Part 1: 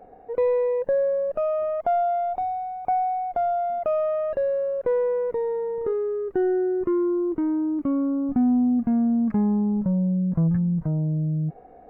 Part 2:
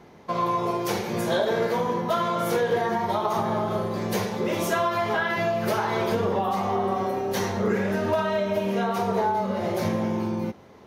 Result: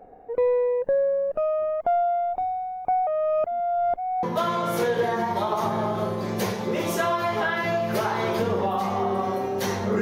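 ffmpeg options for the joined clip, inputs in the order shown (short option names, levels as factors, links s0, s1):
-filter_complex "[0:a]apad=whole_dur=10.01,atrim=end=10.01,asplit=2[s0][s1];[s0]atrim=end=3.072[s2];[s1]atrim=start=3.068:end=4.232,asetpts=PTS-STARTPTS,areverse[s3];[1:a]atrim=start=1.958:end=7.74[s4];[s2][s3]acrossfade=d=0.004:c1=hsin:c2=hsin[s5];[s5][s4]acrossfade=d=0.004:c1=hsin:c2=hsin"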